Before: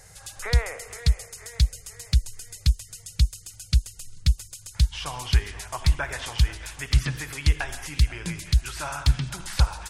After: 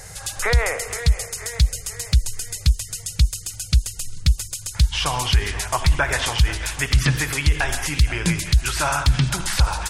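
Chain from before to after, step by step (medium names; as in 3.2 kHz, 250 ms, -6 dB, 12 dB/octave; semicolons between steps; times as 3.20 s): loudness maximiser +17.5 dB; trim -6.5 dB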